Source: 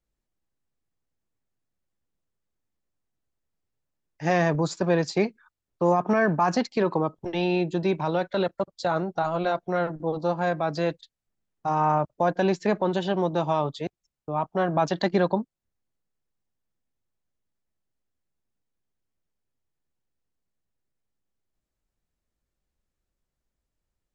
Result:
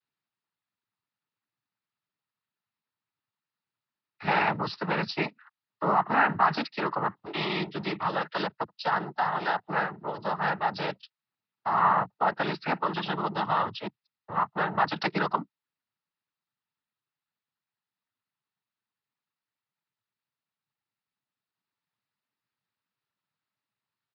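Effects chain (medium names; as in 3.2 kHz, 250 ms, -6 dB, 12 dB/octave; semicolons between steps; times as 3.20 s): noise-vocoded speech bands 12; resampled via 11.025 kHz; resonant low shelf 750 Hz -9 dB, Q 1.5; trim +2 dB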